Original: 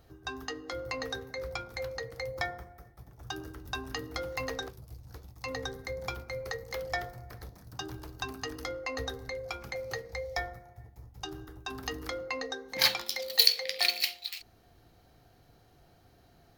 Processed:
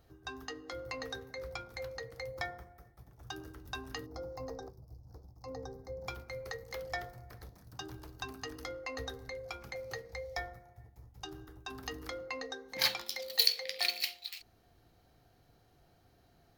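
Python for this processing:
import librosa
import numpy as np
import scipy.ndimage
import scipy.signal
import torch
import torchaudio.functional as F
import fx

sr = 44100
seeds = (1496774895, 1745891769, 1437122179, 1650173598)

y = fx.curve_eq(x, sr, hz=(830.0, 1800.0, 3100.0, 5200.0, 9400.0, 15000.0), db=(0, -16, -23, -4, -18, -8), at=(4.05, 6.06), fade=0.02)
y = y * librosa.db_to_amplitude(-5.0)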